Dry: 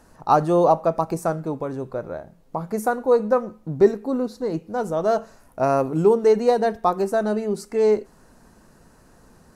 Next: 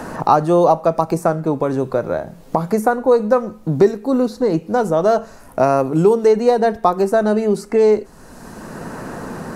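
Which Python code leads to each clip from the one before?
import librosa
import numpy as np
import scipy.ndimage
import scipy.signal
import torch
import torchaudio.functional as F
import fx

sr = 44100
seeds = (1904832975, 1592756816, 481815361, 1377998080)

y = fx.band_squash(x, sr, depth_pct=70)
y = y * 10.0 ** (5.0 / 20.0)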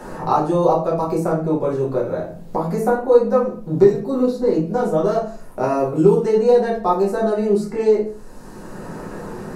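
y = fx.room_shoebox(x, sr, seeds[0], volume_m3=37.0, walls='mixed', distance_m=1.1)
y = y * 10.0 ** (-10.5 / 20.0)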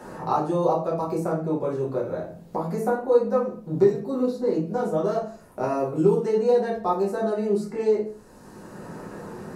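y = scipy.signal.sosfilt(scipy.signal.butter(2, 50.0, 'highpass', fs=sr, output='sos'), x)
y = y * 10.0 ** (-6.0 / 20.0)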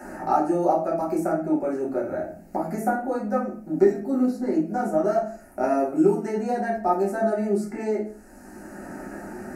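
y = fx.fixed_phaser(x, sr, hz=700.0, stages=8)
y = y * 10.0 ** (5.0 / 20.0)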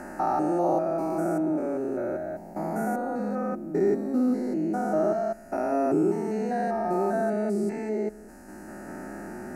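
y = fx.spec_steps(x, sr, hold_ms=200)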